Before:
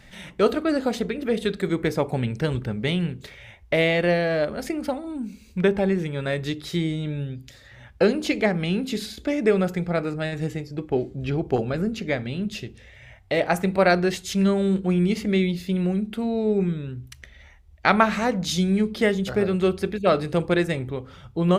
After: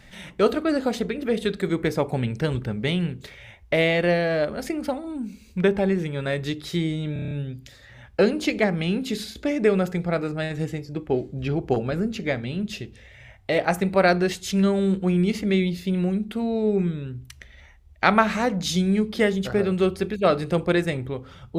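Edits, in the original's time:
0:07.13: stutter 0.03 s, 7 plays

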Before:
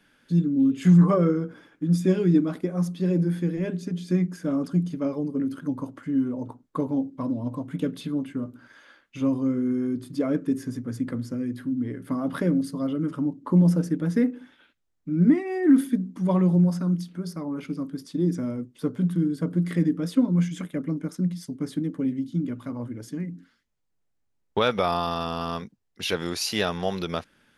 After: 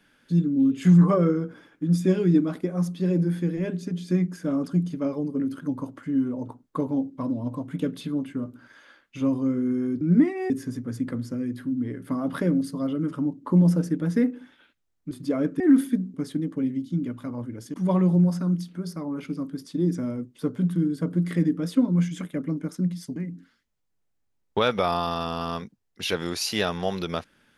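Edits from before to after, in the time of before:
0:10.01–0:10.50: swap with 0:15.11–0:15.60
0:21.56–0:23.16: move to 0:16.14

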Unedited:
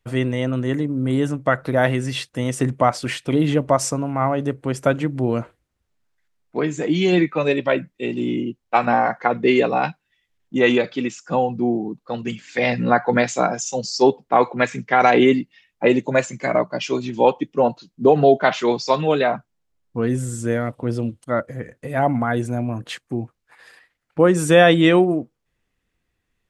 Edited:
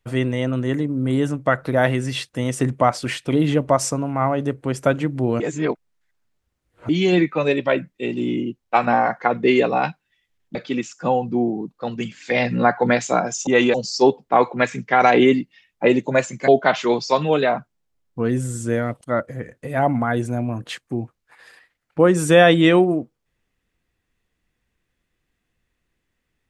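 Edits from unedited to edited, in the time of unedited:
0:05.40–0:06.89: reverse
0:10.55–0:10.82: move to 0:13.74
0:16.48–0:18.26: remove
0:20.79–0:21.21: remove

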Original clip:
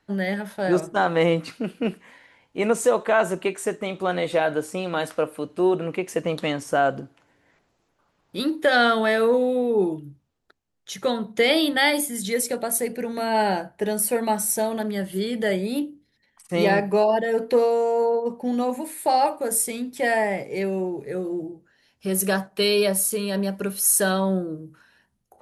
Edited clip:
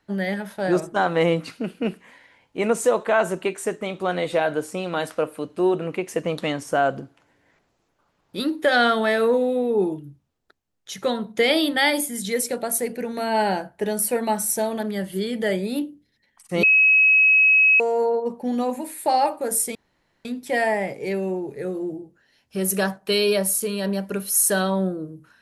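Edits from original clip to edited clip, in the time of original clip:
0:16.63–0:17.80: beep over 2,560 Hz −12 dBFS
0:19.75: splice in room tone 0.50 s

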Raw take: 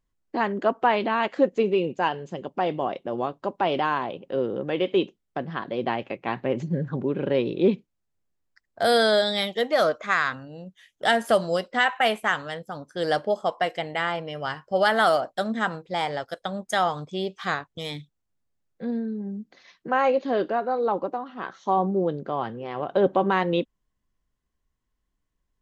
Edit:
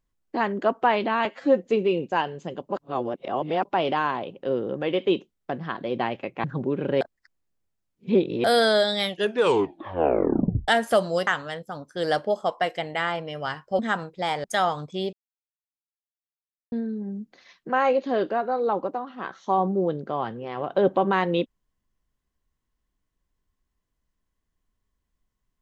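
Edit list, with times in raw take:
0:01.25–0:01.51: time-stretch 1.5×
0:02.56–0:03.52: reverse
0:06.31–0:06.82: remove
0:07.39–0:08.82: reverse
0:09.43: tape stop 1.63 s
0:11.65–0:12.27: remove
0:14.79–0:15.51: remove
0:16.16–0:16.63: remove
0:17.32–0:18.91: silence

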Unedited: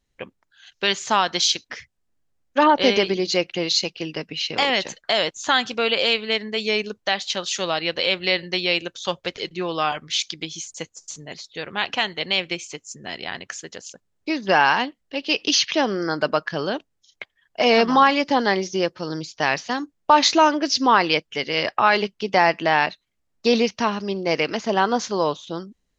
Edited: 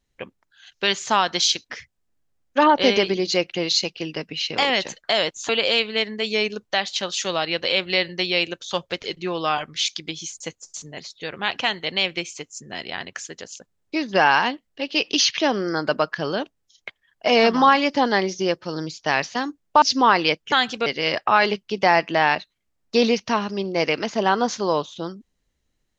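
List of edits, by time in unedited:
0:05.49–0:05.83: move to 0:21.37
0:20.16–0:20.67: remove

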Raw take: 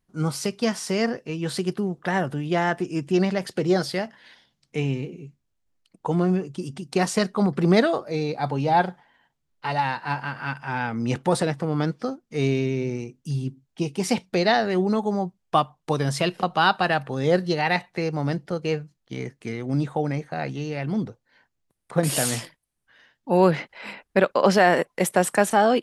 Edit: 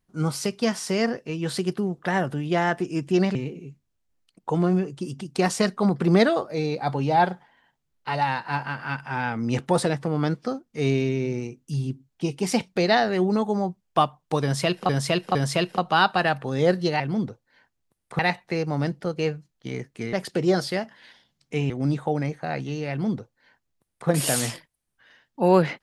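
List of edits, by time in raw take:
0:03.35–0:04.92: move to 0:19.59
0:16.00–0:16.46: repeat, 3 plays
0:20.79–0:21.98: duplicate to 0:17.65

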